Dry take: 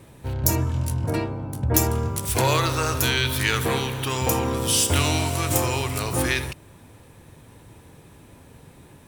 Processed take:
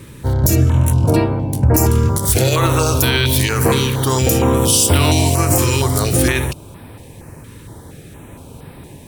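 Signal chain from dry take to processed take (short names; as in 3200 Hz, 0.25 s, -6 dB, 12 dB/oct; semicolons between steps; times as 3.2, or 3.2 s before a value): dynamic EQ 1900 Hz, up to -4 dB, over -36 dBFS, Q 0.84; maximiser +13.5 dB; stepped notch 4.3 Hz 720–6600 Hz; gain -2 dB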